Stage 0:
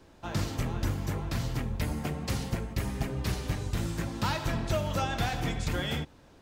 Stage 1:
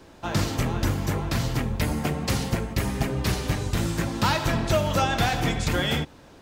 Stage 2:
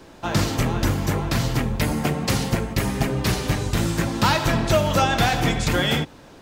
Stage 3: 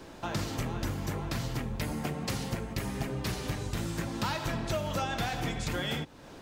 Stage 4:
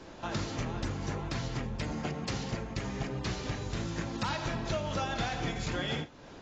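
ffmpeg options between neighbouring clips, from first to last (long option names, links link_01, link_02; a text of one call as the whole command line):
ffmpeg -i in.wav -af "lowshelf=frequency=110:gain=-5,volume=8dB" out.wav
ffmpeg -i in.wav -af "equalizer=frequency=72:width_type=o:width=0.4:gain=-8,volume=4dB" out.wav
ffmpeg -i in.wav -af "acompressor=threshold=-36dB:ratio=2,volume=-2dB" out.wav
ffmpeg -i in.wav -af "volume=-1.5dB" -ar 16000 -c:a aac -b:a 24k out.aac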